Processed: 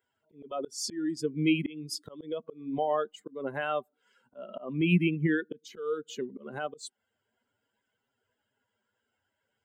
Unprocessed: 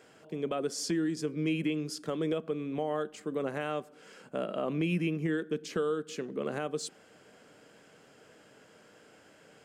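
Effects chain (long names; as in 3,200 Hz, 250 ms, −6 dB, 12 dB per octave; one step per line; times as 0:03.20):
spectral dynamics exaggerated over time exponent 2
volume swells 302 ms
level +9 dB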